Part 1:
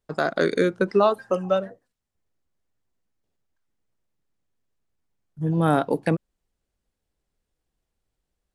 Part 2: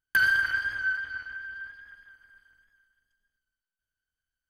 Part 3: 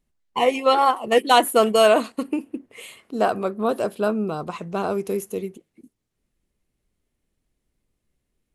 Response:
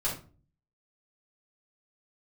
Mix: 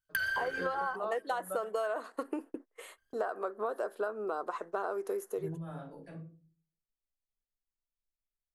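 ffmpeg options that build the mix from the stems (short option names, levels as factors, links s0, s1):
-filter_complex "[0:a]bandreject=f=50:t=h:w=6,bandreject=f=100:t=h:w=6,bandreject=f=150:t=h:w=6,bandreject=f=200:t=h:w=6,bandreject=f=250:t=h:w=6,bandreject=f=300:t=h:w=6,bandreject=f=350:t=h:w=6,bandreject=f=400:t=h:w=6,bandreject=f=450:t=h:w=6,bandreject=f=500:t=h:w=6,volume=0.211,asplit=2[s0][s1];[s1]volume=0.119[s2];[1:a]equalizer=f=510:w=0.63:g=-12,volume=1,asplit=3[s3][s4][s5];[s3]atrim=end=0.96,asetpts=PTS-STARTPTS,afade=t=out:st=0.956:d=0.004:c=hsin[s6];[s4]atrim=start=0.96:end=2.98,asetpts=PTS-STARTPTS,volume=0[s7];[s5]atrim=start=2.98,asetpts=PTS-STARTPTS,afade=t=in:d=0.004:c=hsin[s8];[s6][s7][s8]concat=n=3:v=0:a=1[s9];[2:a]highpass=f=360:w=0.5412,highpass=f=360:w=1.3066,agate=range=0.0316:threshold=0.00794:ratio=16:detection=peak,volume=0.708,asplit=2[s10][s11];[s11]apad=whole_len=376810[s12];[s0][s12]sidechaingate=range=0.0224:threshold=0.00708:ratio=16:detection=peak[s13];[s13][s10]amix=inputs=2:normalize=0,highshelf=f=2000:t=q:w=3:g=-6.5,acompressor=threshold=0.0891:ratio=3,volume=1[s14];[3:a]atrim=start_sample=2205[s15];[s2][s15]afir=irnorm=-1:irlink=0[s16];[s9][s14][s16]amix=inputs=3:normalize=0,acompressor=threshold=0.0282:ratio=6"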